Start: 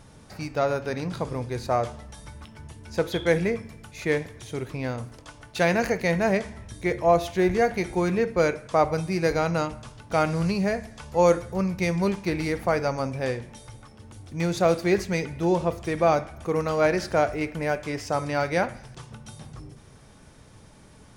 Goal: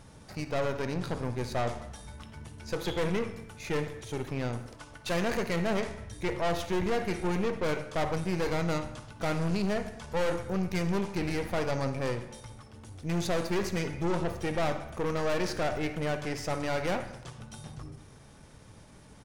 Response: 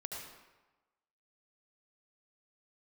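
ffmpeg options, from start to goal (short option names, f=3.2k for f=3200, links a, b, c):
-filter_complex "[0:a]aeval=exprs='(tanh(22.4*val(0)+0.6)-tanh(0.6))/22.4':c=same,atempo=1.1,asplit=2[a][b];[1:a]atrim=start_sample=2205,asetrate=61740,aresample=44100[c];[b][c]afir=irnorm=-1:irlink=0,volume=-3dB[d];[a][d]amix=inputs=2:normalize=0,volume=-1.5dB"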